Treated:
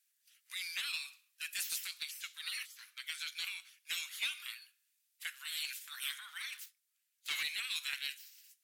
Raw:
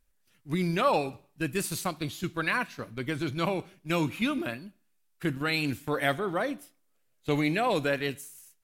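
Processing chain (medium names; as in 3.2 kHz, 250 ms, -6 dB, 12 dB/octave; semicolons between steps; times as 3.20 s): 6.52–7.43 s: waveshaping leveller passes 2; spectral gate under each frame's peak -15 dB weak; Bessel high-pass 2.6 kHz, order 6; saturation -32 dBFS, distortion -16 dB; trim +4.5 dB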